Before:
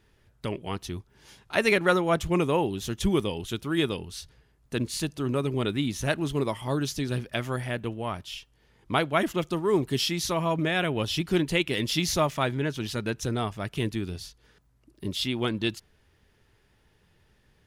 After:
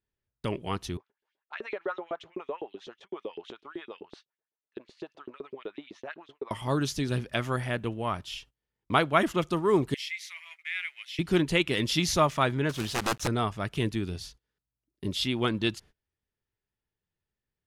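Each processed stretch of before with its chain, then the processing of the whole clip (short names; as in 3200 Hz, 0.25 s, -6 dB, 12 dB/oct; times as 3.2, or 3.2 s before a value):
0.97–6.51 compressor 2.5:1, threshold -35 dBFS + LFO high-pass saw up 7.9 Hz 330–4100 Hz + tape spacing loss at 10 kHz 33 dB
9.94–11.19 G.711 law mismatch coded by A + ladder high-pass 2000 Hz, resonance 80%
12.69–13.28 block floating point 3-bit + wrapped overs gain 18.5 dB
whole clip: gate -50 dBFS, range -26 dB; Bessel low-pass 11000 Hz, order 2; dynamic EQ 1200 Hz, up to +4 dB, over -41 dBFS, Q 2.2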